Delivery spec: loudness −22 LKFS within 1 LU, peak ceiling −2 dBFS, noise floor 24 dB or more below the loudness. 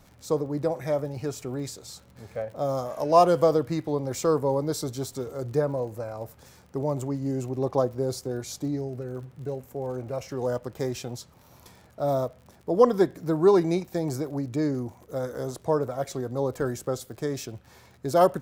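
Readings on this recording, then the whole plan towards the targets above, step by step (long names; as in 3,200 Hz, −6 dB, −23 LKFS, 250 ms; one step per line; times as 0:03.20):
crackle rate 56 per second; integrated loudness −27.5 LKFS; sample peak −5.0 dBFS; target loudness −22.0 LKFS
→ click removal
level +5.5 dB
brickwall limiter −2 dBFS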